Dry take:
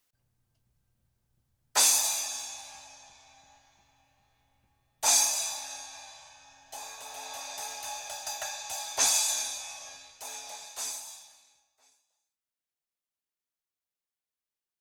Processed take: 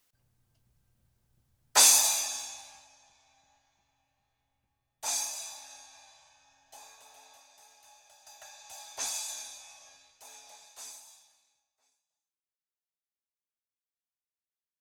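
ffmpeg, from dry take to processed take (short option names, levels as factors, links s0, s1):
-af "volume=4.47,afade=t=out:st=1.98:d=0.9:silence=0.251189,afade=t=out:st=6.76:d=0.72:silence=0.281838,afade=t=in:st=8.17:d=0.64:silence=0.316228"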